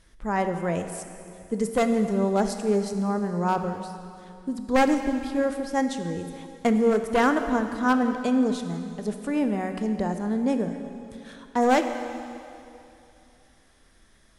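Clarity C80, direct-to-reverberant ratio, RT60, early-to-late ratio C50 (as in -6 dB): 8.5 dB, 6.5 dB, 2.7 s, 7.5 dB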